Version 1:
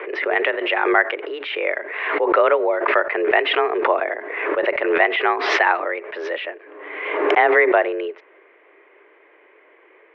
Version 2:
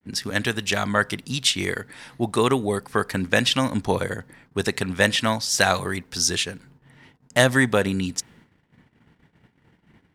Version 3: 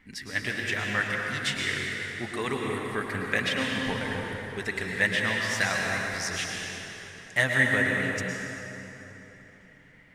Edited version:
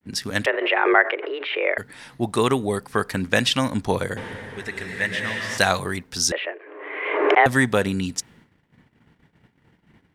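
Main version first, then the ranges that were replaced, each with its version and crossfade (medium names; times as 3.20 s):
2
0.46–1.78 s: from 1
4.17–5.58 s: from 3
6.32–7.46 s: from 1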